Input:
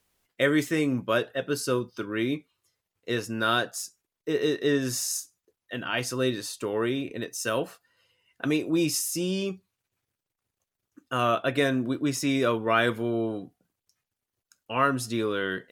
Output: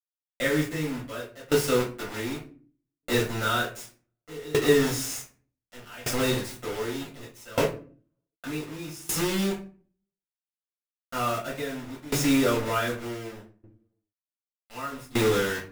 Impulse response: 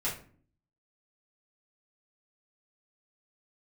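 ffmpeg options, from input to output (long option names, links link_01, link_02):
-filter_complex "[0:a]acrusher=bits=4:mix=0:aa=0.000001[link_01];[1:a]atrim=start_sample=2205[link_02];[link_01][link_02]afir=irnorm=-1:irlink=0,aeval=exprs='val(0)*pow(10,-21*if(lt(mod(0.66*n/s,1),2*abs(0.66)/1000),1-mod(0.66*n/s,1)/(2*abs(0.66)/1000),(mod(0.66*n/s,1)-2*abs(0.66)/1000)/(1-2*abs(0.66)/1000))/20)':channel_layout=same"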